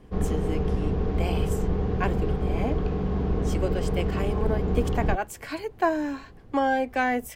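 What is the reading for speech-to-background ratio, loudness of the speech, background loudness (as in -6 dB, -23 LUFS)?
-3.0 dB, -30.5 LUFS, -27.5 LUFS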